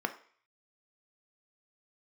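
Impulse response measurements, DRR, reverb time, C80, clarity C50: 6.0 dB, 0.50 s, 17.5 dB, 13.5 dB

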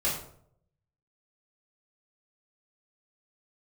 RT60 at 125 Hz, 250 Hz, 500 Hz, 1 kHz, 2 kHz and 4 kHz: 1.0 s, 0.70 s, 0.70 s, 0.55 s, 0.45 s, 0.40 s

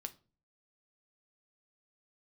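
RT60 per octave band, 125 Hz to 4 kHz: 0.65 s, 0.50 s, 0.40 s, 0.35 s, 0.25 s, 0.25 s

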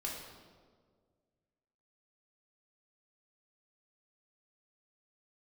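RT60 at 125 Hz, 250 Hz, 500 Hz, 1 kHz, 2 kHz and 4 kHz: 2.2 s, 2.0 s, 2.0 s, 1.5 s, 1.1 s, 1.1 s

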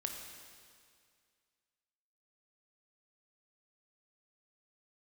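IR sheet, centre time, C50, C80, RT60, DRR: 62 ms, 4.0 dB, 5.0 dB, 2.1 s, 2.5 dB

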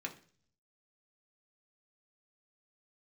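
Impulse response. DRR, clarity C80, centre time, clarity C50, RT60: 0.5 dB, 18.5 dB, 10 ms, 13.5 dB, 0.45 s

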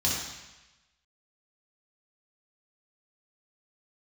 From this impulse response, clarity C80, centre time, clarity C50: 3.0 dB, 69 ms, 0.0 dB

